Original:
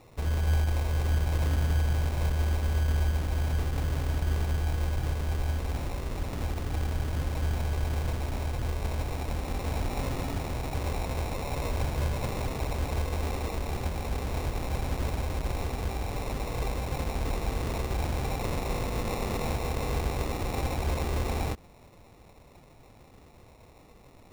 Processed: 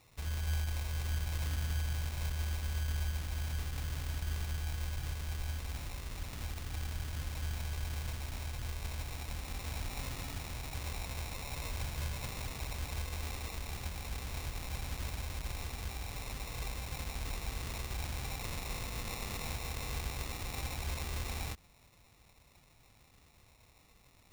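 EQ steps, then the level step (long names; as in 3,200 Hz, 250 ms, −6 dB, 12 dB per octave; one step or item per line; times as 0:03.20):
guitar amp tone stack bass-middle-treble 5-5-5
+5.0 dB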